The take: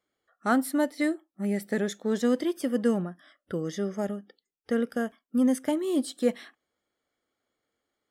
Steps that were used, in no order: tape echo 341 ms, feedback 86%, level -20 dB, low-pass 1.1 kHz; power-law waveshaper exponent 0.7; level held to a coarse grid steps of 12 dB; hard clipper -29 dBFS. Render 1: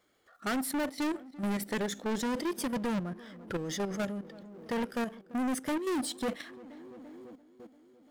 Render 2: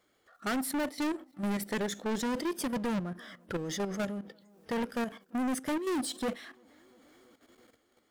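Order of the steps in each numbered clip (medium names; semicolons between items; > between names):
tape echo > power-law waveshaper > level held to a coarse grid > hard clipper; power-law waveshaper > tape echo > level held to a coarse grid > hard clipper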